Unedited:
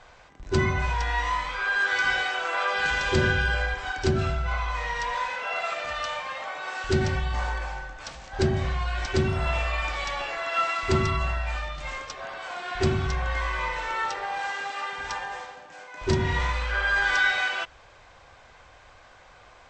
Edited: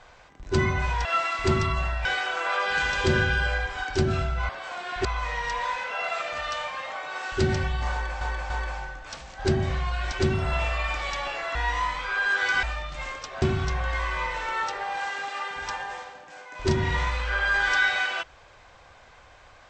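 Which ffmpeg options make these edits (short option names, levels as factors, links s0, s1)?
-filter_complex "[0:a]asplit=10[s0][s1][s2][s3][s4][s5][s6][s7][s8][s9];[s0]atrim=end=1.052[s10];[s1]atrim=start=10.488:end=11.492[s11];[s2]atrim=start=2.128:end=4.572[s12];[s3]atrim=start=12.278:end=12.842[s13];[s4]atrim=start=4.568:end=7.732[s14];[s5]atrim=start=7.438:end=7.732[s15];[s6]atrim=start=7.438:end=10.492[s16];[s7]atrim=start=1.048:end=2.132[s17];[s8]atrim=start=11.488:end=12.282[s18];[s9]atrim=start=12.838[s19];[s10][s11]acrossfade=d=0.004:c1=hsin:c2=hsin[s20];[s20][s12]acrossfade=d=0.004:c1=hsin:c2=hsin[s21];[s21][s13]acrossfade=d=0.004:c1=hsin:c2=hsin[s22];[s22][s14]acrossfade=d=0.004:c1=hsin:c2=hsin[s23];[s23][s15]acrossfade=d=0.004:c1=hsin:c2=hsin[s24];[s24][s16]acrossfade=d=0.004:c1=hsin:c2=hsin[s25];[s25][s17]acrossfade=d=0.004:c1=hsin:c2=hsin[s26];[s26][s18]acrossfade=d=0.004:c1=hsin:c2=hsin[s27];[s27][s19]acrossfade=d=0.004:c1=hsin:c2=hsin"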